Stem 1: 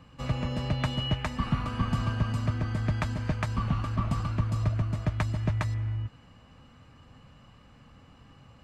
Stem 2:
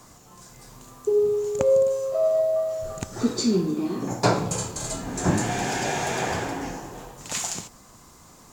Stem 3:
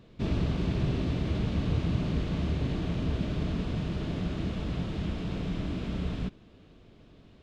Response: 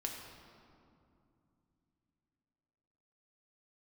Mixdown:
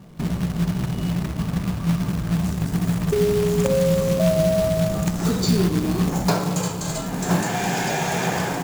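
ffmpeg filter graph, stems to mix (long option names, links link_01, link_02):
-filter_complex "[0:a]volume=-18dB,asplit=2[link_01][link_02];[link_02]volume=-9.5dB[link_03];[1:a]agate=range=-33dB:threshold=-44dB:ratio=3:detection=peak,acrossover=split=380|5400[link_04][link_05][link_06];[link_04]acompressor=threshold=-37dB:ratio=4[link_07];[link_05]acompressor=threshold=-26dB:ratio=4[link_08];[link_06]acompressor=threshold=-41dB:ratio=4[link_09];[link_07][link_08][link_09]amix=inputs=3:normalize=0,adelay=2050,volume=-4dB,asplit=2[link_10][link_11];[link_11]volume=-10.5dB[link_12];[2:a]firequalizer=gain_entry='entry(510,0);entry(780,7);entry(2800,-11)':delay=0.05:min_phase=1,acompressor=threshold=-32dB:ratio=20,flanger=delay=15.5:depth=2.5:speed=2.4,volume=1dB,asplit=2[link_13][link_14];[link_14]volume=-22.5dB[link_15];[3:a]atrim=start_sample=2205[link_16];[link_03][link_12][link_15]amix=inputs=3:normalize=0[link_17];[link_17][link_16]afir=irnorm=-1:irlink=0[link_18];[link_01][link_10][link_13][link_18]amix=inputs=4:normalize=0,equalizer=frequency=170:width=3.4:gain=14.5,acontrast=65,acrusher=bits=3:mode=log:mix=0:aa=0.000001"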